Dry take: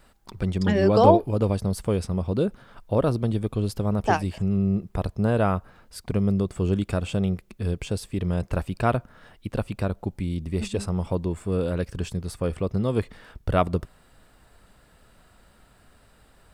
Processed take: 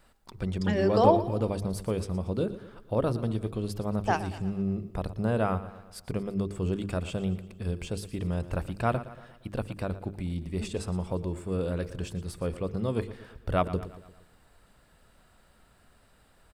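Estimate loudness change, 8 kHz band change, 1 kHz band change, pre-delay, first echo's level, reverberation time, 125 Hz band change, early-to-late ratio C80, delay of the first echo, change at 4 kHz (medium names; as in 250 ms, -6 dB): -5.0 dB, -4.5 dB, -4.5 dB, no reverb, -15.0 dB, no reverb, -6.0 dB, no reverb, 116 ms, -4.5 dB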